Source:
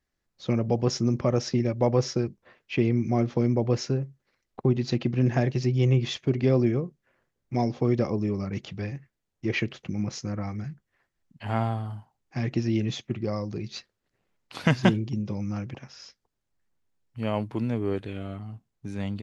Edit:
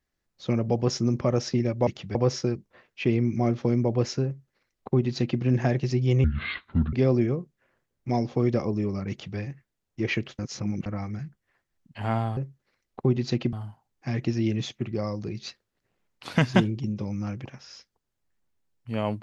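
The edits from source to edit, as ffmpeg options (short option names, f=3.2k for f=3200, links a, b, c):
-filter_complex "[0:a]asplit=9[a][b][c][d][e][f][g][h][i];[a]atrim=end=1.872[j];[b]atrim=start=8.548:end=8.832[k];[c]atrim=start=1.868:end=5.964[l];[d]atrim=start=5.96:end=6.38,asetpts=PTS-STARTPTS,asetrate=26901,aresample=44100[m];[e]atrim=start=6.376:end=9.842[n];[f]atrim=start=9.838:end=10.312,asetpts=PTS-STARTPTS,areverse[o];[g]atrim=start=10.308:end=11.822[p];[h]atrim=start=3.968:end=5.132[q];[i]atrim=start=11.818[r];[j][k]acrossfade=d=0.004:c1=hsin:c2=hsin[s];[s][l]acrossfade=d=0.004:c1=hsin:c2=hsin[t];[t][m]acrossfade=d=0.004:c1=hsin:c2=hsin[u];[u][n]acrossfade=d=0.004:c1=hsin:c2=hsin[v];[v][o]acrossfade=d=0.004:c1=hsin:c2=hsin[w];[w][p]acrossfade=d=0.004:c1=hsin:c2=hsin[x];[x][q]acrossfade=d=0.004:c1=hsin:c2=hsin[y];[y][r]acrossfade=d=0.004:c1=hsin:c2=hsin"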